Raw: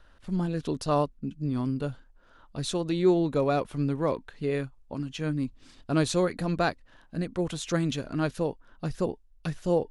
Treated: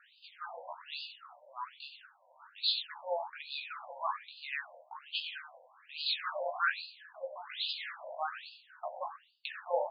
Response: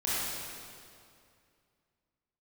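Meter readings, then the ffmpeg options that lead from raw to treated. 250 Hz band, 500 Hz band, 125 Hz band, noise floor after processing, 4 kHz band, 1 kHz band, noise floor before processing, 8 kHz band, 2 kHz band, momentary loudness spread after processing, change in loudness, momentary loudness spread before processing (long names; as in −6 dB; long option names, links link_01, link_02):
below −40 dB, −12.5 dB, below −40 dB, −65 dBFS, +4.0 dB, −4.0 dB, −58 dBFS, below −40 dB, +0.5 dB, 16 LU, −8.5 dB, 12 LU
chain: -filter_complex "[0:a]highpass=280,aemphasis=mode=production:type=bsi,asplit=2[link_01][link_02];[link_02]acompressor=threshold=-39dB:ratio=6,volume=-2dB[link_03];[link_01][link_03]amix=inputs=2:normalize=0,flanger=delay=19.5:depth=3.1:speed=0.39,aeval=exprs='0.119*(abs(mod(val(0)/0.119+3,4)-2)-1)':channel_layout=same,asplit=2[link_04][link_05];[link_05]adelay=13,volume=-5dB[link_06];[link_04][link_06]amix=inputs=2:normalize=0,asplit=4[link_07][link_08][link_09][link_10];[link_08]adelay=94,afreqshift=65,volume=-11dB[link_11];[link_09]adelay=188,afreqshift=130,volume=-20.9dB[link_12];[link_10]adelay=282,afreqshift=195,volume=-30.8dB[link_13];[link_07][link_11][link_12][link_13]amix=inputs=4:normalize=0,asplit=2[link_14][link_15];[1:a]atrim=start_sample=2205,afade=type=out:start_time=0.23:duration=0.01,atrim=end_sample=10584[link_16];[link_15][link_16]afir=irnorm=-1:irlink=0,volume=-11dB[link_17];[link_14][link_17]amix=inputs=2:normalize=0,afftfilt=real='re*between(b*sr/1024,690*pow(3600/690,0.5+0.5*sin(2*PI*1.2*pts/sr))/1.41,690*pow(3600/690,0.5+0.5*sin(2*PI*1.2*pts/sr))*1.41)':imag='im*between(b*sr/1024,690*pow(3600/690,0.5+0.5*sin(2*PI*1.2*pts/sr))/1.41,690*pow(3600/690,0.5+0.5*sin(2*PI*1.2*pts/sr))*1.41)':win_size=1024:overlap=0.75"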